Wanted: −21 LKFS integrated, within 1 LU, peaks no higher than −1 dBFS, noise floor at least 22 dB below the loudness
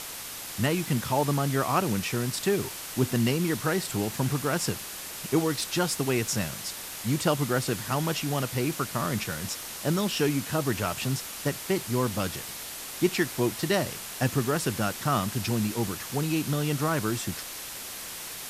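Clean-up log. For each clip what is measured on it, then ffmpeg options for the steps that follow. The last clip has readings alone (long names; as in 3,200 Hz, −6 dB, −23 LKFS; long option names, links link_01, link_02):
background noise floor −39 dBFS; target noise floor −51 dBFS; integrated loudness −28.5 LKFS; sample peak −11.0 dBFS; target loudness −21.0 LKFS
→ -af "afftdn=noise_reduction=12:noise_floor=-39"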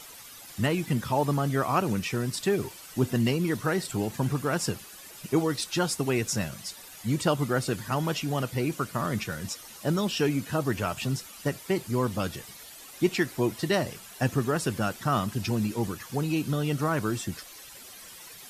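background noise floor −47 dBFS; target noise floor −51 dBFS
→ -af "afftdn=noise_reduction=6:noise_floor=-47"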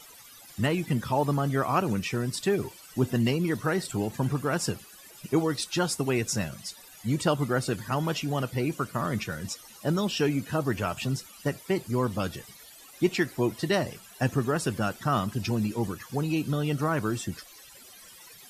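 background noise floor −50 dBFS; target noise floor −51 dBFS
→ -af "afftdn=noise_reduction=6:noise_floor=-50"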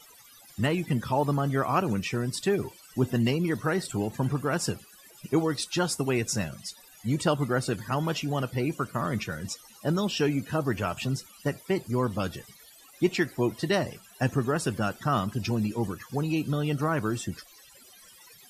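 background noise floor −54 dBFS; integrated loudness −28.5 LKFS; sample peak −11.0 dBFS; target loudness −21.0 LKFS
→ -af "volume=7.5dB"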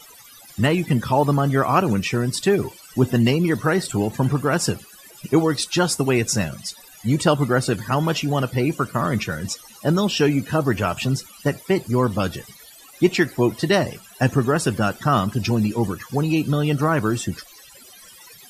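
integrated loudness −21.0 LKFS; sample peak −3.5 dBFS; background noise floor −46 dBFS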